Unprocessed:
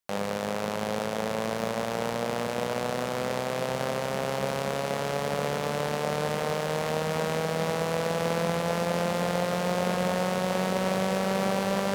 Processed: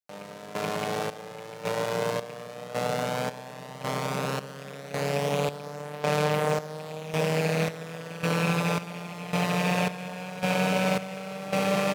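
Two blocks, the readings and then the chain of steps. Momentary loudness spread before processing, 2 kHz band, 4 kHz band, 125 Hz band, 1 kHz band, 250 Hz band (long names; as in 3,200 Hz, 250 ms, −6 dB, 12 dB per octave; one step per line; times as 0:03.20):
3 LU, +1.0 dB, −0.5 dB, +2.0 dB, −1.0 dB, 0.0 dB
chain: loose part that buzzes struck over −31 dBFS, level −22 dBFS
high-pass filter 100 Hz
parametric band 170 Hz +2.5 dB 0.9 octaves
comb filter 6.7 ms, depth 97%
gate pattern "......xxxxxx" 164 BPM −12 dB
level −1.5 dB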